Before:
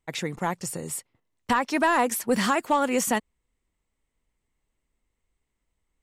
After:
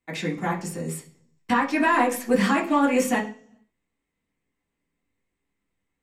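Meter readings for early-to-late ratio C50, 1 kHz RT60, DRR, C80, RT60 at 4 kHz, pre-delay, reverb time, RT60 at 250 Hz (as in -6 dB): 10.5 dB, 0.40 s, -4.5 dB, 15.5 dB, 0.60 s, 3 ms, 0.45 s, 0.70 s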